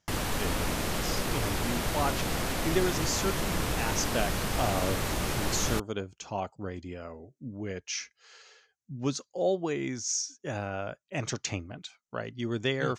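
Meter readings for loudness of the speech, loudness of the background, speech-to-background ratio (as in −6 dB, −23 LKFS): −34.0 LKFS, −31.0 LKFS, −3.0 dB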